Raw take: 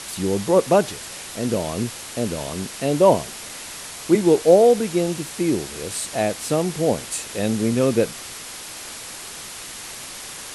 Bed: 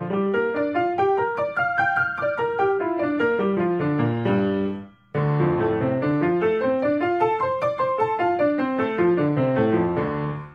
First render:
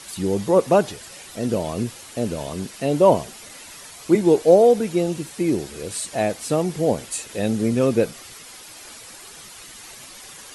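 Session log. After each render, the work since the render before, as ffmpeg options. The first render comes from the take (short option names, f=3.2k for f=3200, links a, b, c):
-af "afftdn=nr=9:nf=-36"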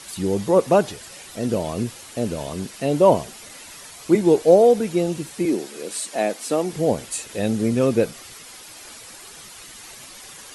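-filter_complex "[0:a]asettb=1/sr,asplit=3[a][b][c];[a]atrim=end=5.454[d];[b]atrim=start=5.45:end=6.73,asetpts=PTS-STARTPTS,afade=t=in:d=0.004:c=qsin,afade=t=out:st=1.276:d=0.004:c=qsin,highpass=f=210:w=0.5412,highpass=f=210:w=1.3066[e];[c]atrim=start=6.726[f];[d][e]acrossfade=d=0.004:c1=hsin:c2=qsin[g];[g][f]acrossfade=d=0.004:c1=qsin:c2=hsin"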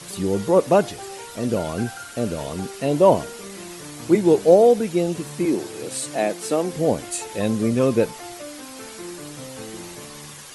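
-filter_complex "[1:a]volume=-17dB[a];[0:a][a]amix=inputs=2:normalize=0"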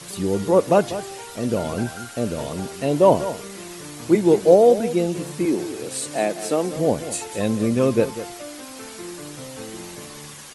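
-af "aecho=1:1:195:0.224"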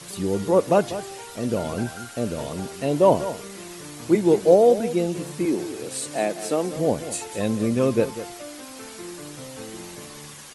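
-af "volume=-2dB"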